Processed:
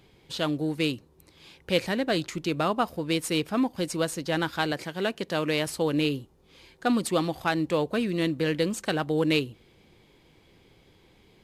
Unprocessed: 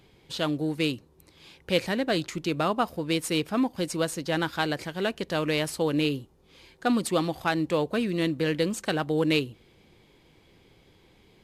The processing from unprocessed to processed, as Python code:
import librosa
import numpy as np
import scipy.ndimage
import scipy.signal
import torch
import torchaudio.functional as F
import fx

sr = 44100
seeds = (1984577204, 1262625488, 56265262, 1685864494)

y = fx.highpass(x, sr, hz=120.0, slope=12, at=(4.72, 5.67))